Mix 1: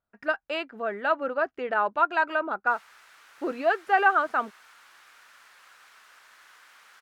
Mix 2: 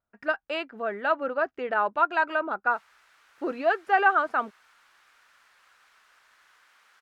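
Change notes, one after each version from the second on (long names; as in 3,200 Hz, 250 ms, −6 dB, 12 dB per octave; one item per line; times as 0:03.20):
background −6.0 dB
master: add high-shelf EQ 8,100 Hz −4.5 dB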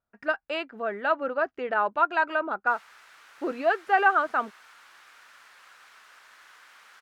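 background +7.5 dB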